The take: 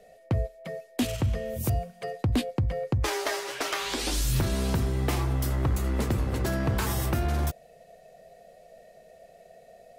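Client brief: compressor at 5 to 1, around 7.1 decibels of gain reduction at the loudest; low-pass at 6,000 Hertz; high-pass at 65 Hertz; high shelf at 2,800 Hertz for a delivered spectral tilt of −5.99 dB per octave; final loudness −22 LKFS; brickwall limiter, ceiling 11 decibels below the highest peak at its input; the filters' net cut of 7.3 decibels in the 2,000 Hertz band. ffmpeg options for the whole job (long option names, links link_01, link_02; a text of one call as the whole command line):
ffmpeg -i in.wav -af "highpass=65,lowpass=6000,equalizer=frequency=2000:width_type=o:gain=-6.5,highshelf=frequency=2800:gain=-7,acompressor=threshold=-30dB:ratio=5,volume=17.5dB,alimiter=limit=-13dB:level=0:latency=1" out.wav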